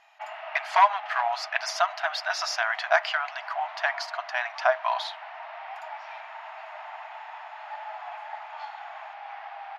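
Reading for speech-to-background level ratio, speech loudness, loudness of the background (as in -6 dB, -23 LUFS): 13.0 dB, -27.0 LUFS, -40.0 LUFS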